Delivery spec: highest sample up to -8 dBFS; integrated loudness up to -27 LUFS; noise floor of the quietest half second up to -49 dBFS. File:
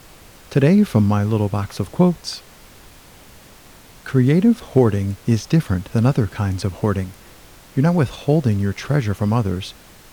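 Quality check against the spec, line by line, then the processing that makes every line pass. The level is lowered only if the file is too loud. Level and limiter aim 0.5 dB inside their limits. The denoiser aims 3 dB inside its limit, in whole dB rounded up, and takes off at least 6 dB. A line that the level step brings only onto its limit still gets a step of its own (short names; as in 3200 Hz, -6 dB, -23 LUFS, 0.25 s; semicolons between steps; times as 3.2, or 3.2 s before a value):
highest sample -2.5 dBFS: fail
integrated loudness -19.0 LUFS: fail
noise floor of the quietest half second -45 dBFS: fail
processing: gain -8.5 dB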